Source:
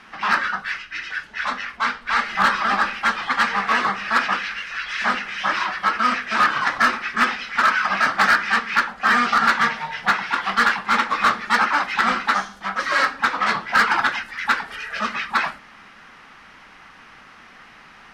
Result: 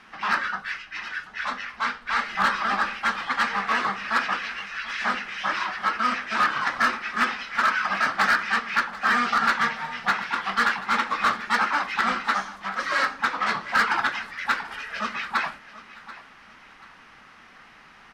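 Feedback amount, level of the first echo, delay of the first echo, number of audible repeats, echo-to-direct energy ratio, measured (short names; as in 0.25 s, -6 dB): 34%, -17.0 dB, 0.735 s, 2, -16.5 dB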